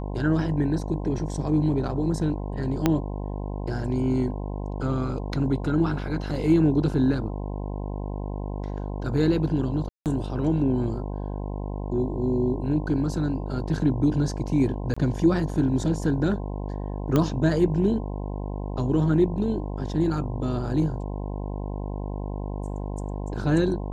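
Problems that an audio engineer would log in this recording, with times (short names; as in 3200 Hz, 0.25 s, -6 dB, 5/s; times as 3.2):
buzz 50 Hz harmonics 21 -31 dBFS
2.86 pop -7 dBFS
9.89–10.06 gap 0.168 s
14.94–14.96 gap 25 ms
17.16 pop -10 dBFS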